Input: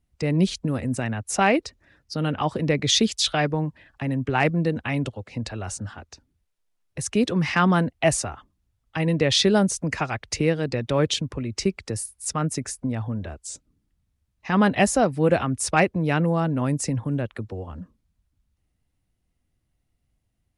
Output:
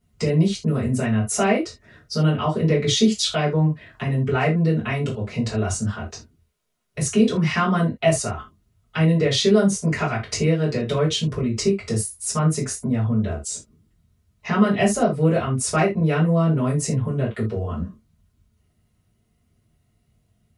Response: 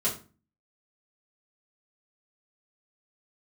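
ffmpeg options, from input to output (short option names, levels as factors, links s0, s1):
-filter_complex "[0:a]acompressor=threshold=0.0178:ratio=2[s0];[1:a]atrim=start_sample=2205,atrim=end_sample=3969[s1];[s0][s1]afir=irnorm=-1:irlink=0,volume=1.19"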